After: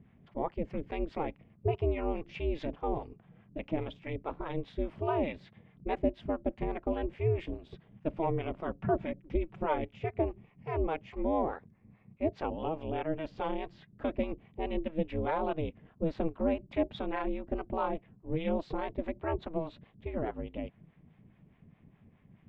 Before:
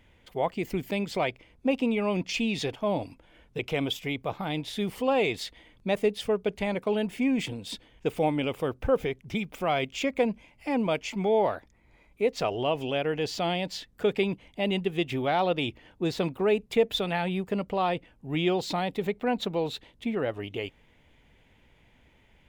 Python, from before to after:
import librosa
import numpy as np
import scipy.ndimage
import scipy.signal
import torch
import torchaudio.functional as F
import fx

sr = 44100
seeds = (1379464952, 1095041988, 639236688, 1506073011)

y = scipy.signal.sosfilt(scipy.signal.butter(2, 1700.0, 'lowpass', fs=sr, output='sos'), x)
y = fx.low_shelf(y, sr, hz=110.0, db=11.0)
y = fx.harmonic_tremolo(y, sr, hz=4.8, depth_pct=70, crossover_hz=550.0)
y = fx.comb(y, sr, ms=5.3, depth=0.53, at=(8.59, 9.78))
y = y * np.sin(2.0 * np.pi * 160.0 * np.arange(len(y)) / sr)